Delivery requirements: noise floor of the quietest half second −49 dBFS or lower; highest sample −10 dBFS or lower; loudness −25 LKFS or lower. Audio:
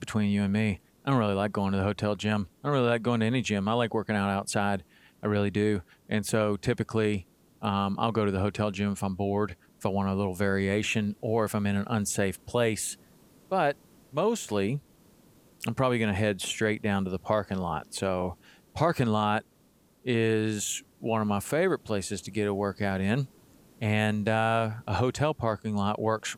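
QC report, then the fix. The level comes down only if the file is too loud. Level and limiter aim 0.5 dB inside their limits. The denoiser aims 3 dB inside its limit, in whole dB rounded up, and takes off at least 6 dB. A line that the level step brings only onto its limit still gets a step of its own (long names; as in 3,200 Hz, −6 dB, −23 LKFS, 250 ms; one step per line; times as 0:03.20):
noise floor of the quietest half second −63 dBFS: in spec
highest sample −10.5 dBFS: in spec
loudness −28.5 LKFS: in spec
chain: no processing needed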